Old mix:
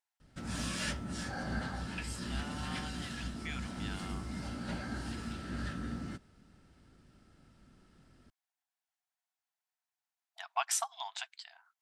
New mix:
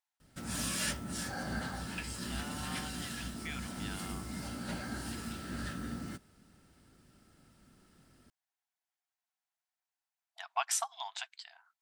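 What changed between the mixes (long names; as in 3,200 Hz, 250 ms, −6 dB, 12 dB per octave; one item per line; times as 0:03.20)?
background: remove high-frequency loss of the air 63 metres
master: add low-shelf EQ 75 Hz −6 dB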